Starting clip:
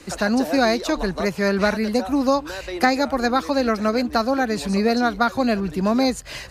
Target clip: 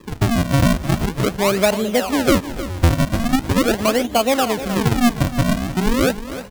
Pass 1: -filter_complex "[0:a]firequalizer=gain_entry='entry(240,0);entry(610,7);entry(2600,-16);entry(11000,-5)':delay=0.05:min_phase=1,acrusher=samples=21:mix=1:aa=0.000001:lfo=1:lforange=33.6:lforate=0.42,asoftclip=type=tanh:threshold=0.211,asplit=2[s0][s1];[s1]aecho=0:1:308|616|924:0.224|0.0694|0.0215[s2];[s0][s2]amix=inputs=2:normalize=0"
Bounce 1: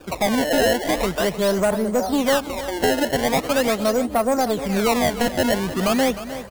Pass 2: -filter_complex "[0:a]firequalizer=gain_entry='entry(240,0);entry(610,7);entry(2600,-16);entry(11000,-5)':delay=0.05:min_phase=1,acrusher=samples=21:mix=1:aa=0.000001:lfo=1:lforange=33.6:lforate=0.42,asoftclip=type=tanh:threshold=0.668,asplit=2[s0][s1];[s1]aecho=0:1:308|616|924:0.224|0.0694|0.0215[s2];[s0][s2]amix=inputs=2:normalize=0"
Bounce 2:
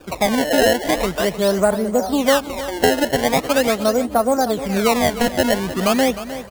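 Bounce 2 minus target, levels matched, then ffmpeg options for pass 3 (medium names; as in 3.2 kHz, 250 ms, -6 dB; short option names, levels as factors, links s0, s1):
decimation with a swept rate: distortion -11 dB
-filter_complex "[0:a]firequalizer=gain_entry='entry(240,0);entry(610,7);entry(2600,-16);entry(11000,-5)':delay=0.05:min_phase=1,acrusher=samples=59:mix=1:aa=0.000001:lfo=1:lforange=94.4:lforate=0.42,asoftclip=type=tanh:threshold=0.668,asplit=2[s0][s1];[s1]aecho=0:1:308|616|924:0.224|0.0694|0.0215[s2];[s0][s2]amix=inputs=2:normalize=0"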